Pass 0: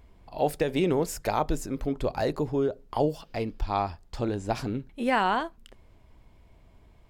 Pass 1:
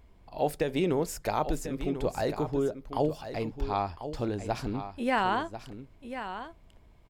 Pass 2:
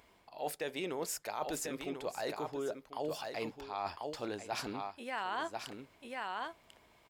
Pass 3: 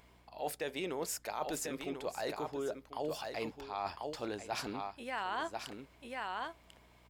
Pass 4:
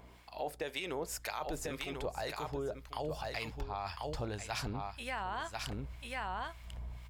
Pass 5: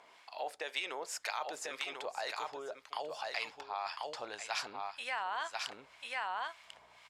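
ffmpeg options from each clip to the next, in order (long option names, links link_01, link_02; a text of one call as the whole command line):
ffmpeg -i in.wav -af "aecho=1:1:1043:0.299,volume=-2.5dB" out.wav
ffmpeg -i in.wav -af "highpass=frequency=920:poles=1,areverse,acompressor=threshold=-42dB:ratio=5,areverse,volume=6.5dB" out.wav
ffmpeg -i in.wav -af "aeval=exprs='val(0)+0.000562*(sin(2*PI*60*n/s)+sin(2*PI*2*60*n/s)/2+sin(2*PI*3*60*n/s)/3+sin(2*PI*4*60*n/s)/4+sin(2*PI*5*60*n/s)/5)':channel_layout=same" out.wav
ffmpeg -i in.wav -filter_complex "[0:a]asubboost=boost=10.5:cutoff=97,acrossover=split=1100[link_01][link_02];[link_01]aeval=exprs='val(0)*(1-0.7/2+0.7/2*cos(2*PI*1.9*n/s))':channel_layout=same[link_03];[link_02]aeval=exprs='val(0)*(1-0.7/2-0.7/2*cos(2*PI*1.9*n/s))':channel_layout=same[link_04];[link_03][link_04]amix=inputs=2:normalize=0,acompressor=threshold=-43dB:ratio=6,volume=8.5dB" out.wav
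ffmpeg -i in.wav -af "highpass=710,lowpass=7700,volume=3dB" out.wav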